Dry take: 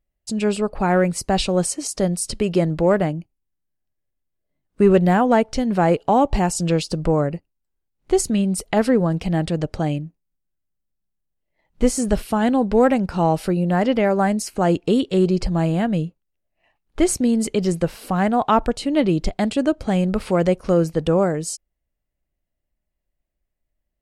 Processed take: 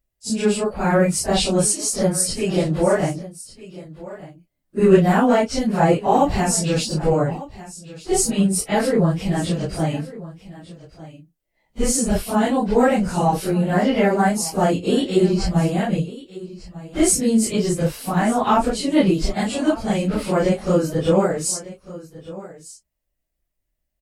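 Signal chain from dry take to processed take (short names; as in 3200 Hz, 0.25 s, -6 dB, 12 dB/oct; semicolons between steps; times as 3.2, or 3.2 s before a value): phase scrambler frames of 0.1 s; high shelf 4200 Hz +7.5 dB; echo 1.199 s -17.5 dB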